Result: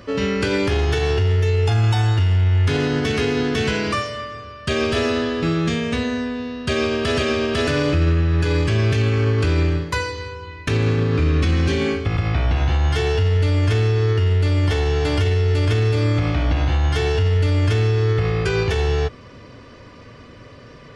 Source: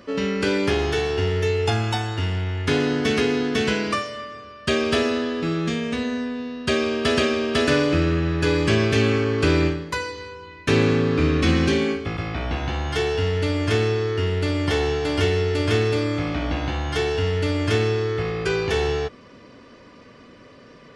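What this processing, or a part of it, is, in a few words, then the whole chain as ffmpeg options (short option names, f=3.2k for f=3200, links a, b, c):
car stereo with a boomy subwoofer: -af "lowshelf=f=150:t=q:w=1.5:g=7,alimiter=limit=-15dB:level=0:latency=1:release=63,volume=4dB"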